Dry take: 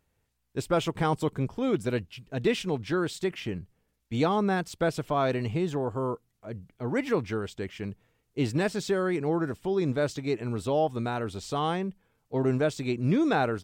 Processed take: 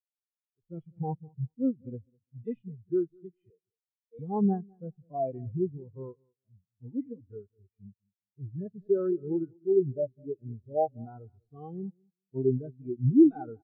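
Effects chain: tracing distortion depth 0.057 ms; harmonic-percussive split percussive -17 dB; 3.5–4.19 resonant high-pass 490 Hz, resonance Q 4.9; feedback echo 0.202 s, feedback 32%, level -12.5 dB; spectral expander 2.5:1; gain +6 dB

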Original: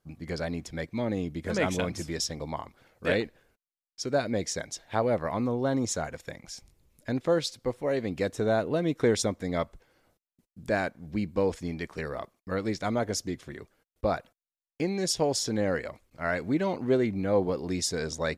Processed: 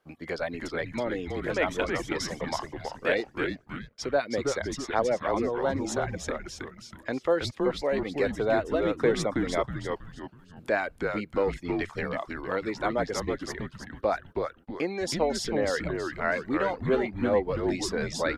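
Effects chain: three-band isolator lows -14 dB, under 290 Hz, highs -20 dB, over 3100 Hz; reverb removal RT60 0.72 s; high shelf 4000 Hz +11 dB; in parallel at +0.5 dB: compressor, threshold -39 dBFS, peak gain reduction 17 dB; on the sum: frequency-shifting echo 0.322 s, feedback 37%, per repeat -150 Hz, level -4 dB

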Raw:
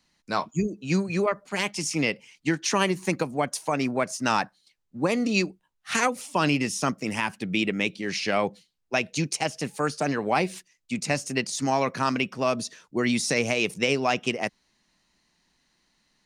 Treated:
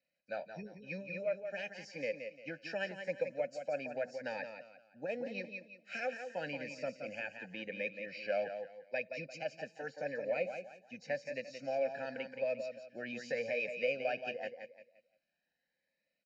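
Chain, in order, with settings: nonlinear frequency compression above 3800 Hz 1.5:1; vowel filter e; bell 3300 Hz -12 dB 0.32 oct; comb 1.3 ms, depth 74%; in parallel at -1.5 dB: negative-ratio compressor -29 dBFS; on the sum: feedback echo 0.174 s, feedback 31%, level -8 dB; cascading phaser rising 0.87 Hz; gain -5 dB

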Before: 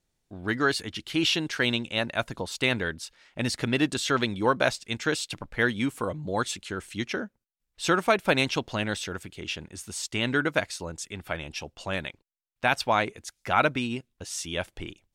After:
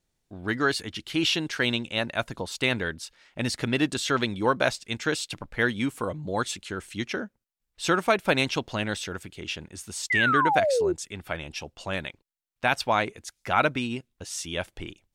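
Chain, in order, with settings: painted sound fall, 10.1–10.93, 340–2100 Hz -23 dBFS

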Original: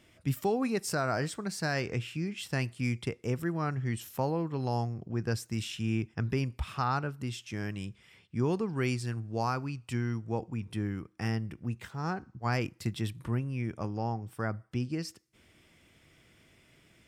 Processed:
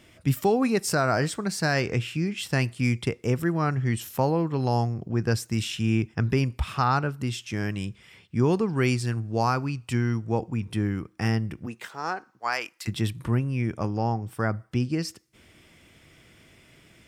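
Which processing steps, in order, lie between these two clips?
11.65–12.87 HPF 290 Hz -> 1100 Hz 12 dB/oct; gain +7 dB

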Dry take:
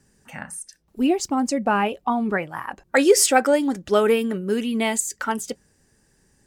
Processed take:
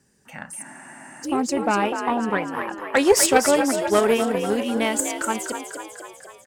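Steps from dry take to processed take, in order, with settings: on a send: frequency-shifting echo 0.248 s, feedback 61%, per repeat +50 Hz, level -7.5 dB; on the sum: added harmonics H 4 -16 dB, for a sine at -0.5 dBFS; HPF 120 Hz 6 dB/oct; spectral freeze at 0.65, 0.60 s; gain -1 dB

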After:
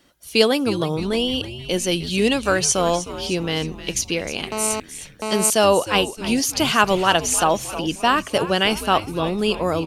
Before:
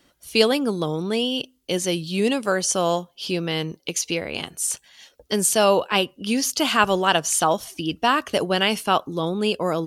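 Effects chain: 1.91–2.77 bell 3200 Hz +4 dB 2.5 oct; frequency-shifting echo 0.309 s, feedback 53%, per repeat -120 Hz, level -13 dB; 4.52–5.5 GSM buzz -27 dBFS; gain +1.5 dB

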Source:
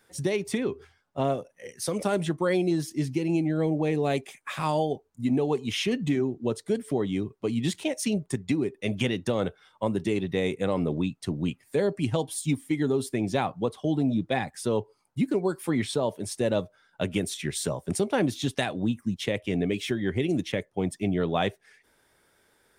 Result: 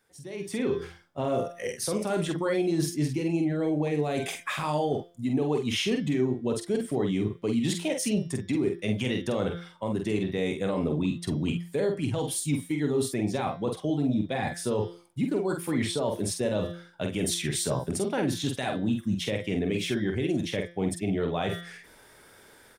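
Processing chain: de-hum 172.4 Hz, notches 35; reverse; compressor 4:1, threshold -36 dBFS, peak gain reduction 13.5 dB; reverse; limiter -29 dBFS, peak gain reduction 7 dB; AGC gain up to 16 dB; doubler 47 ms -5 dB; gain -6 dB

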